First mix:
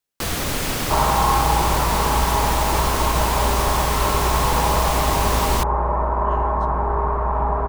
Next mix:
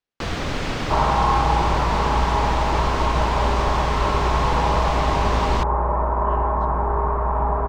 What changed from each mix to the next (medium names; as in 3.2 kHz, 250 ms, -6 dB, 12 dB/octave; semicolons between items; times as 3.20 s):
master: add distance through air 150 m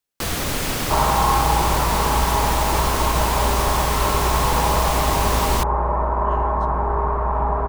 master: remove distance through air 150 m